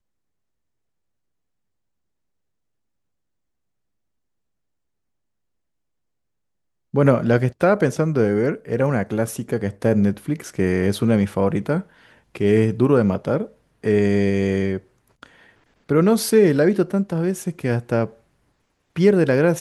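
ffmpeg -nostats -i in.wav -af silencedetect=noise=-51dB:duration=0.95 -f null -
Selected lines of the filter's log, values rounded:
silence_start: 0.00
silence_end: 6.93 | silence_duration: 6.93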